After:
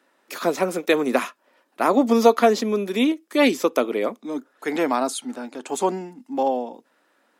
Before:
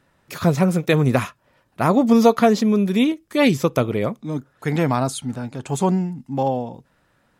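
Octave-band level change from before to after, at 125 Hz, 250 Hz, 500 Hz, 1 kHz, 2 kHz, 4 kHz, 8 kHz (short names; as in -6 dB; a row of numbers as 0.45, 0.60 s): -19.0, -4.5, 0.0, 0.0, 0.0, 0.0, 0.0 dB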